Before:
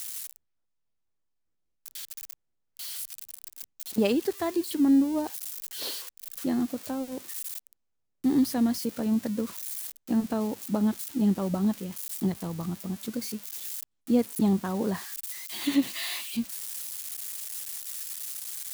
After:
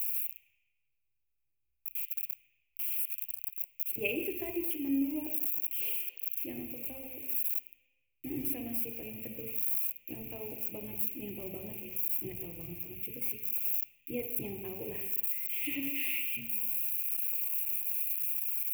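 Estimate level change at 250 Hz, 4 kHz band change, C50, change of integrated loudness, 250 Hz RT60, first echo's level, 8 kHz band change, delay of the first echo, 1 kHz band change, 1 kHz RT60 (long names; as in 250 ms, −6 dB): −14.0 dB, −11.5 dB, 7.0 dB, −3.0 dB, 0.90 s, no echo audible, −6.5 dB, no echo audible, −18.0 dB, 1.2 s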